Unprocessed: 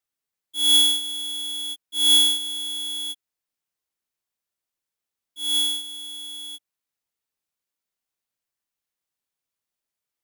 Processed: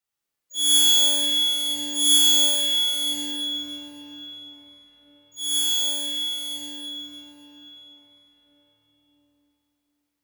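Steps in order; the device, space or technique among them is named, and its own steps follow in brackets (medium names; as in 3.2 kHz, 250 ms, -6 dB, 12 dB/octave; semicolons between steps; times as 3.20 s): shimmer-style reverb (harmony voices +12 st -9 dB; reverberation RT60 6.2 s, pre-delay 8 ms, DRR -8.5 dB); trim -3 dB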